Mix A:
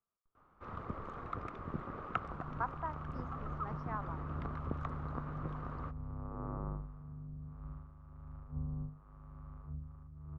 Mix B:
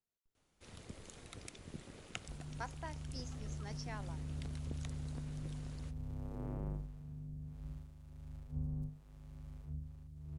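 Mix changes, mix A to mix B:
first sound -7.5 dB; master: remove resonant low-pass 1.2 kHz, resonance Q 7

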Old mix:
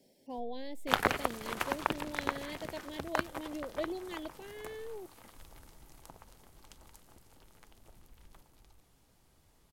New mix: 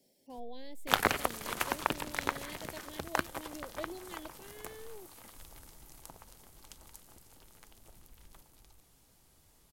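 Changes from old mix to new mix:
speech -6.0 dB; master: add treble shelf 4.7 kHz +8 dB

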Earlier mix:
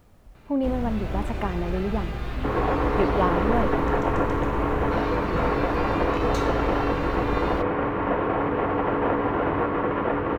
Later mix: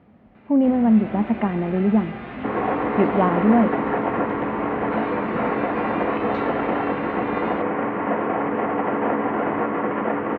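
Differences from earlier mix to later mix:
speech: add bass shelf 350 Hz +9 dB; master: add cabinet simulation 170–3000 Hz, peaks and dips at 220 Hz +9 dB, 730 Hz +4 dB, 2 kHz +4 dB

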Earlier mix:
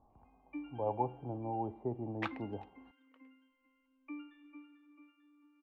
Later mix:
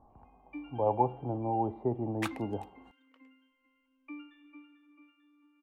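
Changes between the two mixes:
speech +6.0 dB; master: remove distance through air 270 m

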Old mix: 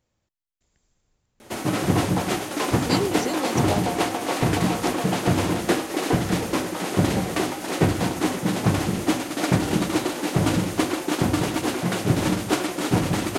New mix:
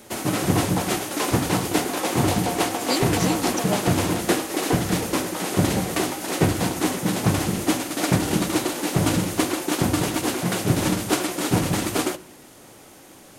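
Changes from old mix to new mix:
background: entry -1.40 s; master: add treble shelf 6.7 kHz +8 dB

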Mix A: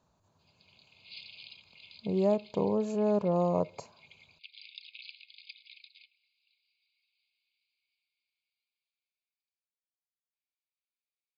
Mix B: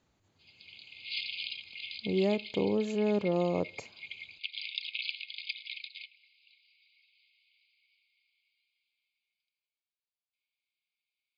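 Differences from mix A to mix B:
background +8.0 dB; master: add graphic EQ with 31 bands 160 Hz -5 dB, 315 Hz +6 dB, 630 Hz -6 dB, 1 kHz -9 dB, 2 kHz +11 dB, 3.15 kHz +6 dB

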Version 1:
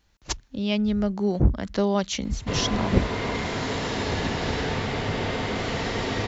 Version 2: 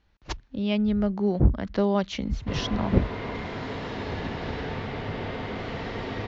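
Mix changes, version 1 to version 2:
background -4.5 dB; master: add distance through air 200 m

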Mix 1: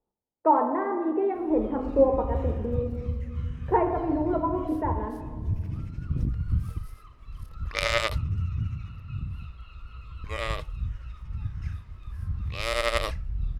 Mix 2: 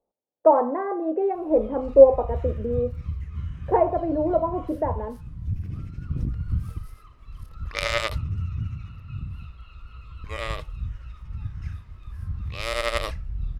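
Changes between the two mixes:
speech: add peaking EQ 560 Hz +13.5 dB 0.81 oct; reverb: off

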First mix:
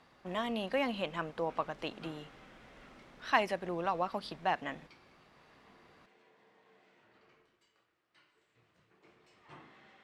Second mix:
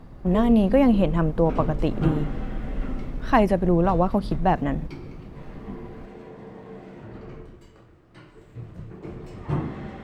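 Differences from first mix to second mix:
background +10.5 dB; master: remove band-pass filter 3.6 kHz, Q 0.66

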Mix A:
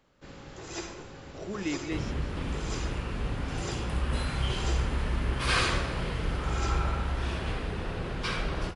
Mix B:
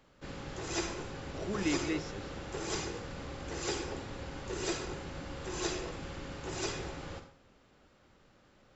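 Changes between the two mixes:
first sound +3.0 dB; second sound: muted

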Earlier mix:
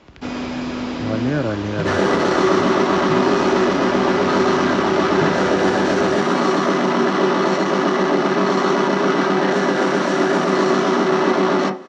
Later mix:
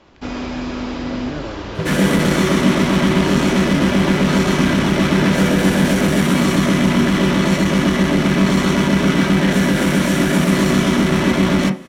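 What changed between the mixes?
speech -10.0 dB; first sound: remove high-pass 92 Hz; second sound: remove cabinet simulation 320–5600 Hz, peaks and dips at 390 Hz +7 dB, 780 Hz +8 dB, 1.2 kHz +6 dB, 2.3 kHz -8 dB, 3.3 kHz -6 dB

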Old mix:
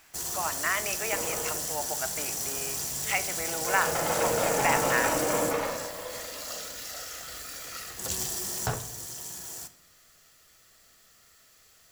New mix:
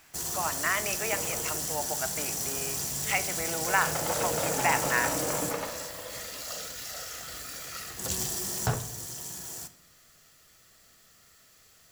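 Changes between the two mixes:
second sound: send -11.0 dB; master: add peaking EQ 150 Hz +4.5 dB 1.9 oct

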